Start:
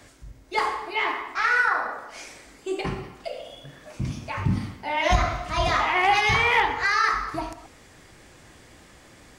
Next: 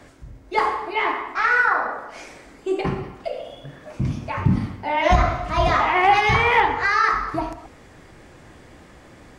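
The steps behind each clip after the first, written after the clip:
high-shelf EQ 2,500 Hz −11 dB
mains-hum notches 50/100 Hz
level +6 dB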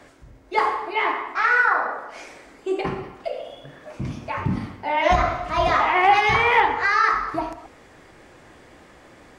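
bass and treble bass −7 dB, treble −2 dB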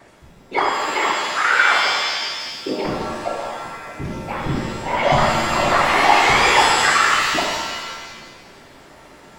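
random phases in short frames
reverb with rising layers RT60 1.4 s, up +7 semitones, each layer −2 dB, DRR 2.5 dB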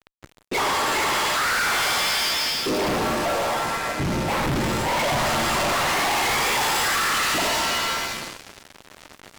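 fuzz pedal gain 35 dB, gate −39 dBFS
level −8 dB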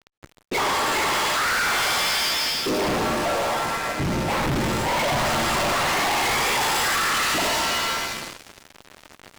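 IMA ADPCM 176 kbit/s 44,100 Hz

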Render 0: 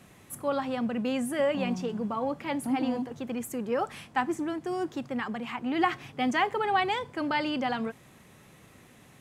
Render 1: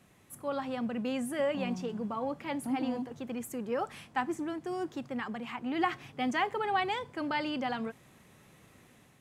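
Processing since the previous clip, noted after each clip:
automatic gain control gain up to 4 dB
level −8 dB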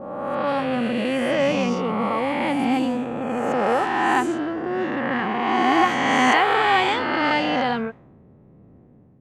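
peak hold with a rise ahead of every peak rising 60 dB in 2.60 s
low-pass that shuts in the quiet parts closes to 400 Hz, open at −22.5 dBFS
level +7.5 dB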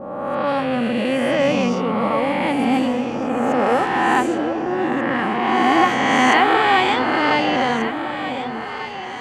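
delay that swaps between a low-pass and a high-pass 743 ms, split 830 Hz, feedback 70%, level −8 dB
level +2.5 dB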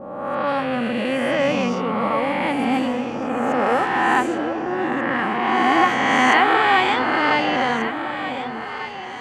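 dynamic equaliser 1,500 Hz, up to +4 dB, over −31 dBFS, Q 0.83
level −3 dB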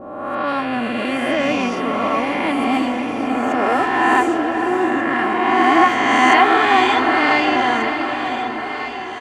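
comb filter 2.9 ms, depth 58%
feedback delay with all-pass diffusion 567 ms, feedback 41%, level −8.5 dB
level +1 dB

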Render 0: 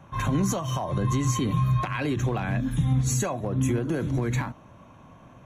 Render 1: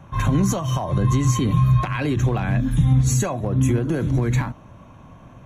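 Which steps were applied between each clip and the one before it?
low-shelf EQ 120 Hz +8 dB
level +3 dB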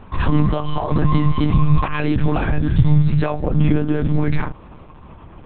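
one-pitch LPC vocoder at 8 kHz 150 Hz
level +4 dB

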